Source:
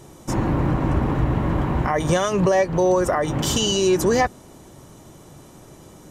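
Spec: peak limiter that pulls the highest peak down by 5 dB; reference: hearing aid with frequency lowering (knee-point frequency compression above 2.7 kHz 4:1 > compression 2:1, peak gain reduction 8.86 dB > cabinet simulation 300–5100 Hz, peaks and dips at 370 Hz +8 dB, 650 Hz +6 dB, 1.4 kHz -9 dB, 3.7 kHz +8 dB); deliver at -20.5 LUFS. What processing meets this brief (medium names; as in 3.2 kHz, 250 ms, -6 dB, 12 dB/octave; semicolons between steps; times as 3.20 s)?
peak limiter -14.5 dBFS; knee-point frequency compression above 2.7 kHz 4:1; compression 2:1, threshold -34 dBFS; cabinet simulation 300–5100 Hz, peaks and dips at 370 Hz +8 dB, 650 Hz +6 dB, 1.4 kHz -9 dB, 3.7 kHz +8 dB; trim +8.5 dB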